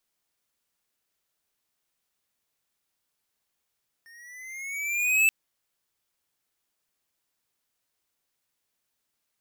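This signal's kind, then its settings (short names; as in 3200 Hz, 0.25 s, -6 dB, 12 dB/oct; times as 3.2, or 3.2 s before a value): gliding synth tone square, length 1.23 s, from 1820 Hz, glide +6.5 st, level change +33 dB, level -18.5 dB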